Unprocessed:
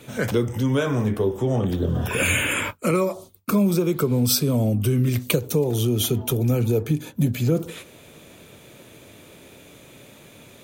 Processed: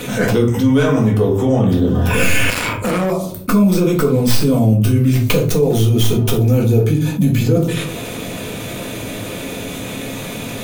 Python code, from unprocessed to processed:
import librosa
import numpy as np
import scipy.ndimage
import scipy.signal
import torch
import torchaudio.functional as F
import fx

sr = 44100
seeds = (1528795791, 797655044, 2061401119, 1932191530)

y = fx.tracing_dist(x, sr, depth_ms=0.12)
y = fx.room_shoebox(y, sr, seeds[0], volume_m3=200.0, walls='furnished', distance_m=1.9)
y = fx.tube_stage(y, sr, drive_db=21.0, bias=0.55, at=(2.5, 3.12))
y = fx.env_flatten(y, sr, amount_pct=50)
y = y * librosa.db_to_amplitude(-1.5)